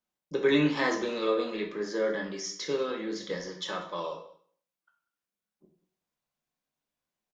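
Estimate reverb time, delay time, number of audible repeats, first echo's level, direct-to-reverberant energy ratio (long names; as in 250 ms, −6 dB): 0.55 s, 192 ms, 1, −21.5 dB, 1.5 dB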